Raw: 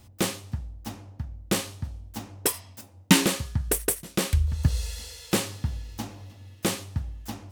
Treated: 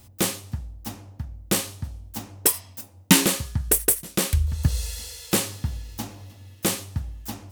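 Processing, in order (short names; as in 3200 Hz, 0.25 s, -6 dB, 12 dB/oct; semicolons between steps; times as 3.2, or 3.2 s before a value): high shelf 8100 Hz +9 dB; gain +1 dB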